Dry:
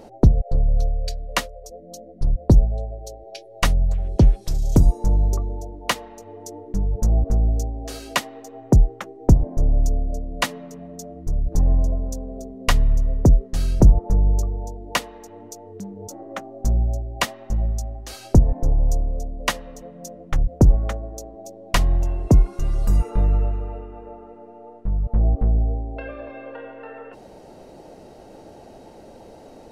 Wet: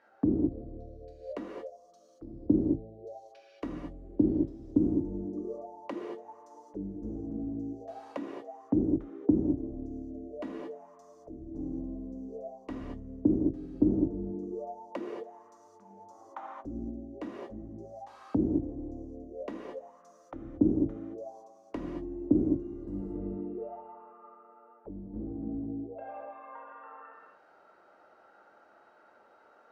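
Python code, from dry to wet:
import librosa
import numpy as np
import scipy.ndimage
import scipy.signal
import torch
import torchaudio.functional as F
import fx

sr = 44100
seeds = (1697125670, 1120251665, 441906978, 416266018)

y = fx.rev_gated(x, sr, seeds[0], gate_ms=250, shape='flat', drr_db=-4.0)
y = fx.auto_wah(y, sr, base_hz=300.0, top_hz=1700.0, q=7.3, full_db=-17.0, direction='down')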